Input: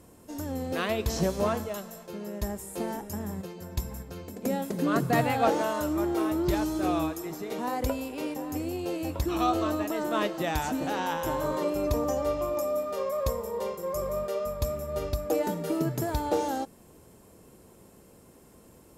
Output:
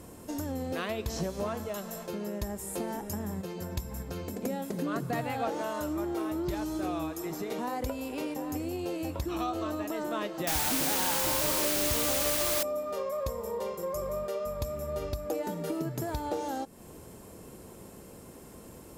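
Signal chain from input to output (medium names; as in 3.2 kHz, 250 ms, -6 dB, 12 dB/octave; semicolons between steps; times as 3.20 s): compression 3:1, threshold -40 dBFS, peak gain reduction 15 dB; 10.47–12.63 s: word length cut 6-bit, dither triangular; trim +6 dB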